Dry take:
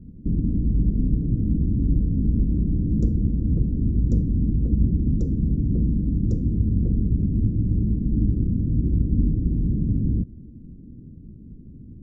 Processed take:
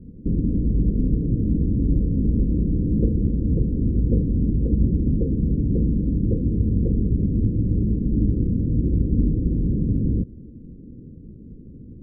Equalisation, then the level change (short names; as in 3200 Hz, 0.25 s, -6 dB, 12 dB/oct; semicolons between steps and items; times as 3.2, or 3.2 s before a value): synth low-pass 500 Hz, resonance Q 3.4; 0.0 dB